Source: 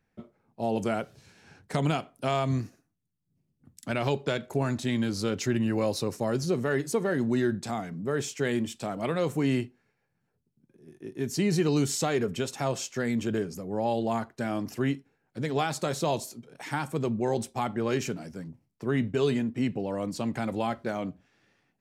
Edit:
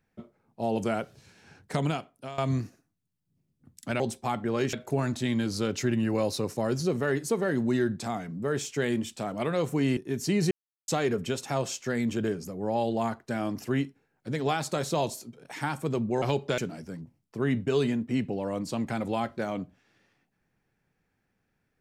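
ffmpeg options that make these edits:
-filter_complex "[0:a]asplit=9[a][b][c][d][e][f][g][h][i];[a]atrim=end=2.38,asetpts=PTS-STARTPTS,afade=t=out:st=1.73:d=0.65:silence=0.158489[j];[b]atrim=start=2.38:end=4.002,asetpts=PTS-STARTPTS,afade=t=in:d=0.004:c=hsin:silence=0.158489[k];[c]atrim=start=17.318:end=18.052[l];[d]atrim=start=4.358:end=9.602[m];[e]atrim=start=11.068:end=11.61,asetpts=PTS-STARTPTS,afade=t=out:st=0.538:d=0.004:c=hsin[n];[f]atrim=start=11.61:end=11.98,asetpts=PTS-STARTPTS,volume=0[o];[g]atrim=start=11.98:end=17.322,asetpts=PTS-STARTPTS,afade=t=in:d=0.004:c=hsin[p];[h]atrim=start=3.998:end=4.362[q];[i]atrim=start=18.048[r];[j][k]concat=n=2:v=0:a=1[s];[s][l]acrossfade=d=0.004:c1=hsin:c2=hsin[t];[t][m]acrossfade=d=0.004:c1=hsin:c2=hsin[u];[n][o][p]concat=n=3:v=0:a=1[v];[u][v]acrossfade=d=0.004:c1=hsin:c2=hsin[w];[w][q]acrossfade=d=0.004:c1=hsin:c2=hsin[x];[x][r]acrossfade=d=0.004:c1=hsin:c2=hsin"

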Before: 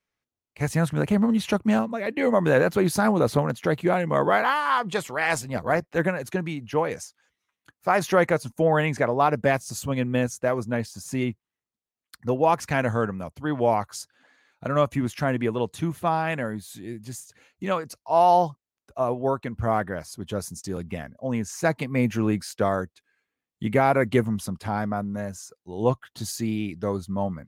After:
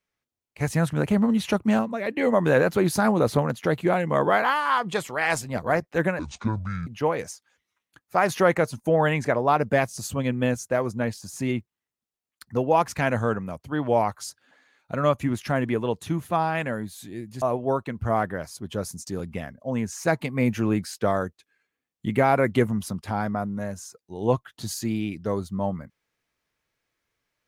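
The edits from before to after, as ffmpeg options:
-filter_complex "[0:a]asplit=4[a][b][c][d];[a]atrim=end=6.194[e];[b]atrim=start=6.19:end=6.59,asetpts=PTS-STARTPTS,asetrate=26019,aresample=44100,atrim=end_sample=29898,asetpts=PTS-STARTPTS[f];[c]atrim=start=6.586:end=17.142[g];[d]atrim=start=18.988[h];[e][f]acrossfade=d=0.004:c1=hsin:c2=hsin[i];[i][g]acrossfade=d=0.004:c1=hsin:c2=hsin[j];[j][h]acrossfade=d=0.004:c1=hsin:c2=hsin"

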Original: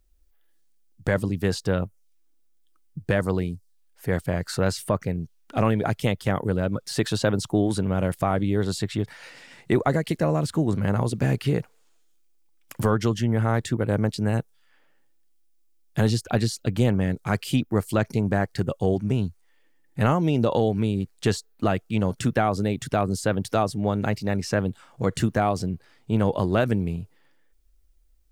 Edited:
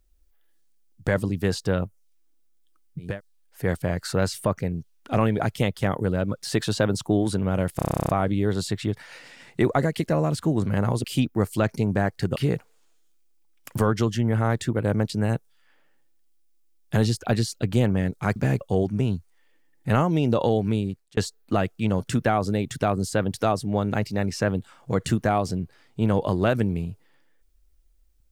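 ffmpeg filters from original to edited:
-filter_complex "[0:a]asplit=18[a][b][c][d][e][f][g][h][i][j][k][l][m][n][o][p][q][r];[a]atrim=end=3.21[s];[b]atrim=start=3.41:end=8.232[t];[c]atrim=start=8.198:end=8.232[u];[d]atrim=start=8.198:end=8.232[v];[e]atrim=start=8.198:end=8.232[w];[f]atrim=start=8.198:end=8.232[x];[g]atrim=start=8.198:end=8.232[y];[h]atrim=start=8.198:end=8.232[z];[i]atrim=start=8.198:end=8.232[aa];[j]atrim=start=8.198:end=8.232[ab];[k]atrim=start=8.198:end=8.232[ac];[l]atrim=start=8.198:end=8.232[ad];[m]atrim=start=8.198:end=11.152[ae];[n]atrim=start=17.398:end=18.722[af];[o]atrim=start=11.398:end=17.402[ag];[p]atrim=start=11.148:end=11.402[ah];[q]atrim=start=18.718:end=21.28,asetpts=PTS-STARTPTS,afade=t=out:st=2.172:d=0.39[ai];[r]atrim=start=21.28,asetpts=PTS-STARTPTS,afade=t=in:d=0.004:c=hsin[aj];[s][t]acrossfade=d=0.24:c1=tri:c2=tri[ak];[ak][u]acrossfade=d=0.004:c1=hsin:c2=hsin[al];[al][v]acrossfade=d=0.004:c1=hsin:c2=hsin[am];[am][w]acrossfade=d=0.004:c1=hsin:c2=hsin[an];[an][x]acrossfade=d=0.004:c1=hsin:c2=hsin[ao];[ao][y]acrossfade=d=0.004:c1=hsin:c2=hsin[ap];[ap][z]acrossfade=d=0.004:c1=hsin:c2=hsin[aq];[aq][aa]acrossfade=d=0.004:c1=hsin:c2=hsin[ar];[ar][ab]acrossfade=d=0.004:c1=hsin:c2=hsin[as];[as][ac]acrossfade=d=0.004:c1=hsin:c2=hsin[at];[at][ad]acrossfade=d=0.004:c1=hsin:c2=hsin[au];[au][ae]acrossfade=d=0.004:c1=hsin:c2=hsin[av];[av][af]acrossfade=d=0.004:c1=hsin:c2=hsin[aw];[aw][ag]acrossfade=d=0.004:c1=hsin:c2=hsin[ax];[ax][ah]acrossfade=d=0.004:c1=hsin:c2=hsin[ay];[ai][aj]concat=n=2:v=0:a=1[az];[ay][az]acrossfade=d=0.004:c1=hsin:c2=hsin"

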